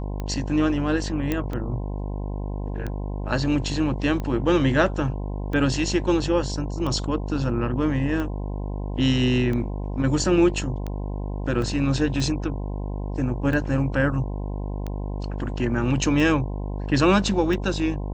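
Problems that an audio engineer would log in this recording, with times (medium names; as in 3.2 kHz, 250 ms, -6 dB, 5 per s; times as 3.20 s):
buzz 50 Hz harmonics 21 -29 dBFS
tick 45 rpm -18 dBFS
1.32 s: pop -11 dBFS
11.62 s: dropout 2.2 ms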